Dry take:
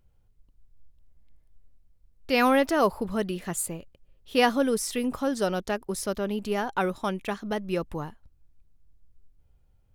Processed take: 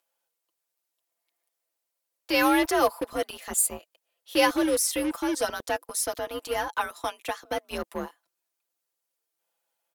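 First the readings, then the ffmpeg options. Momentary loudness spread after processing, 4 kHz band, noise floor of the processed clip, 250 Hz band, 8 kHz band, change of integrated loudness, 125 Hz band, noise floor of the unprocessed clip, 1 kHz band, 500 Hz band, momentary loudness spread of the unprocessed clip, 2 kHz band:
12 LU, +2.5 dB, -83 dBFS, -1.5 dB, +7.0 dB, +0.5 dB, -12.5 dB, -64 dBFS, 0.0 dB, -1.5 dB, 10 LU, +1.5 dB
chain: -filter_complex "[0:a]afreqshift=53,aemphasis=mode=production:type=cd,aecho=1:1:5.9:0.78,acrossover=split=510|7900[s0][s1][s2];[s0]acrusher=bits=4:mix=0:aa=0.5[s3];[s3][s1][s2]amix=inputs=3:normalize=0,volume=0.75"

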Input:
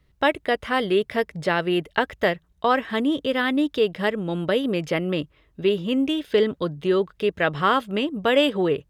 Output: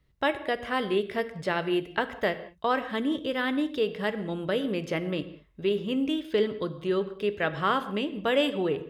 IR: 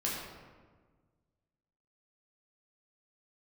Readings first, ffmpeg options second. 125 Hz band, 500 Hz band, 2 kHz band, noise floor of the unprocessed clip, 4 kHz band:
-6.0 dB, -5.5 dB, -5.5 dB, -62 dBFS, -6.0 dB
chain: -filter_complex "[0:a]asplit=2[s0][s1];[1:a]atrim=start_sample=2205,afade=t=out:st=0.26:d=0.01,atrim=end_sample=11907[s2];[s1][s2]afir=irnorm=-1:irlink=0,volume=0.224[s3];[s0][s3]amix=inputs=2:normalize=0,volume=0.422"

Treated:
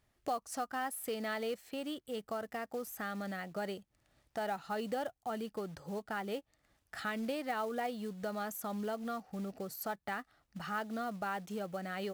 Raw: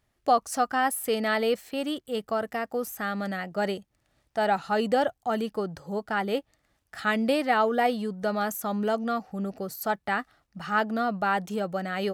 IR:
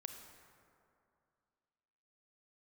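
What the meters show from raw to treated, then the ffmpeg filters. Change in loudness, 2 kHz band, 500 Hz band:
-11.5 dB, -11.5 dB, -11.5 dB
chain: -af "acompressor=threshold=0.00891:ratio=2,acrusher=bits=5:mode=log:mix=0:aa=0.000001,volume=0.794"

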